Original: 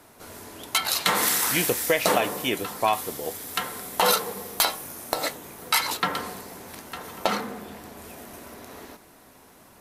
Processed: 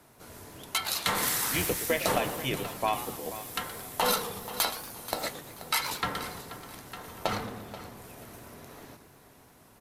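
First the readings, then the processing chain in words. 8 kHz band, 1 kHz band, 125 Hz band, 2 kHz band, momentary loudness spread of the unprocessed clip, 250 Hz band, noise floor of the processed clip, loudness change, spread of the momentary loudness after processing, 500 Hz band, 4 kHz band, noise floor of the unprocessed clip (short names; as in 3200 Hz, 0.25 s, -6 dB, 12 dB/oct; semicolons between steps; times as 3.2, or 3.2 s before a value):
-5.5 dB, -5.5 dB, 0.0 dB, -5.5 dB, 21 LU, -4.5 dB, -57 dBFS, -5.5 dB, 20 LU, -5.5 dB, -5.5 dB, -53 dBFS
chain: octaver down 1 oct, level -1 dB; feedback echo 0.482 s, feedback 26%, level -14.5 dB; warbling echo 0.115 s, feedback 47%, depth 217 cents, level -13.5 dB; gain -6 dB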